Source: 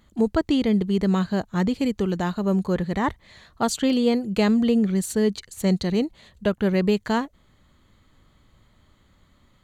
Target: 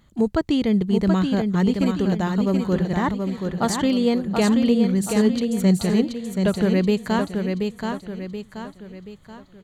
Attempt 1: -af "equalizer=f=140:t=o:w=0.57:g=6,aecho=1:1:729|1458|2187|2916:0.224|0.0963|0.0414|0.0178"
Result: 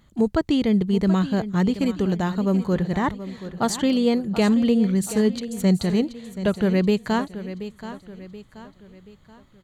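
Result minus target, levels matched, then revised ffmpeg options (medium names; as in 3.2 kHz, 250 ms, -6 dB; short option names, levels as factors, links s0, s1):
echo-to-direct -8 dB
-af "equalizer=f=140:t=o:w=0.57:g=6,aecho=1:1:729|1458|2187|2916|3645:0.562|0.242|0.104|0.0447|0.0192"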